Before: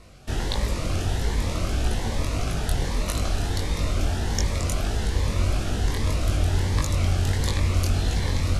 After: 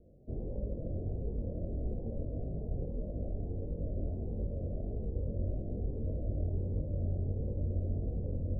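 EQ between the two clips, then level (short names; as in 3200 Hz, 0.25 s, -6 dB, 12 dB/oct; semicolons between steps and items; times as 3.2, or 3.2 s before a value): steep low-pass 580 Hz 48 dB/oct; low shelf 150 Hz -8 dB; dynamic EQ 330 Hz, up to -4 dB, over -46 dBFS, Q 2; -5.0 dB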